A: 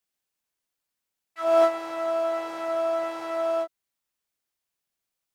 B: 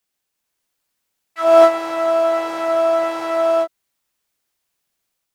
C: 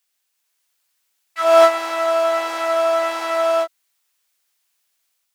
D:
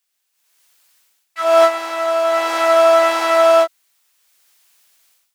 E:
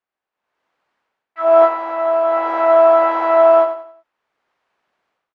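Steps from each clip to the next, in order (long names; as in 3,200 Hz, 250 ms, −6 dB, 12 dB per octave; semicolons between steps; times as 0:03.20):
automatic gain control gain up to 3.5 dB; level +6 dB
high-pass filter 1,400 Hz 6 dB per octave; level +5.5 dB
automatic gain control gain up to 14 dB; level −1 dB
low-pass filter 1,100 Hz 12 dB per octave; repeating echo 90 ms, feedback 34%, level −9.5 dB; level +3 dB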